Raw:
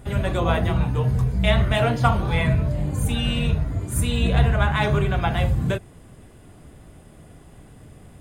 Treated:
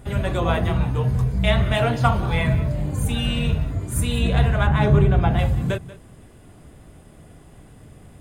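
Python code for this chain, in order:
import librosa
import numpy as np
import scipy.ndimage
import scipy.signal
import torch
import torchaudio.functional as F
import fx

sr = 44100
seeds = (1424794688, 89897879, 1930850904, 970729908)

y = fx.quant_float(x, sr, bits=6, at=(2.13, 3.75))
y = fx.tilt_shelf(y, sr, db=6.0, hz=840.0, at=(4.67, 5.39))
y = y + 10.0 ** (-17.5 / 20.0) * np.pad(y, (int(186 * sr / 1000.0), 0))[:len(y)]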